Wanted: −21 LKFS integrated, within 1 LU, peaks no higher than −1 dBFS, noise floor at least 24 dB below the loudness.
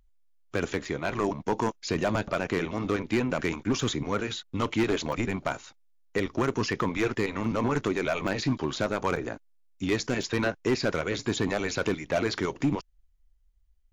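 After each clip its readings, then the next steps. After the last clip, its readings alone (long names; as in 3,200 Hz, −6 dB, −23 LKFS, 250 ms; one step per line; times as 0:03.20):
share of clipped samples 0.9%; peaks flattened at −18.5 dBFS; number of dropouts 6; longest dropout 3.8 ms; integrated loudness −29.0 LKFS; sample peak −18.5 dBFS; target loudness −21.0 LKFS
→ clipped peaks rebuilt −18.5 dBFS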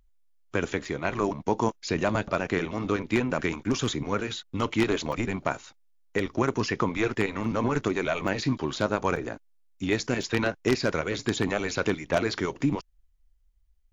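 share of clipped samples 0.0%; number of dropouts 6; longest dropout 3.8 ms
→ repair the gap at 0:00.85/0:05.12/0:07.44/0:08.28/0:09.16/0:10.23, 3.8 ms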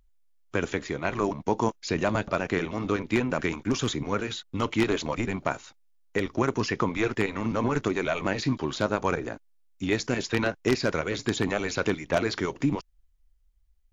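number of dropouts 0; integrated loudness −28.0 LKFS; sample peak −9.5 dBFS; target loudness −21.0 LKFS
→ level +7 dB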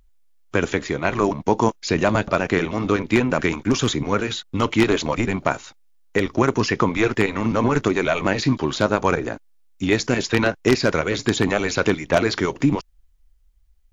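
integrated loudness −21.5 LKFS; sample peak −2.5 dBFS; background noise floor −56 dBFS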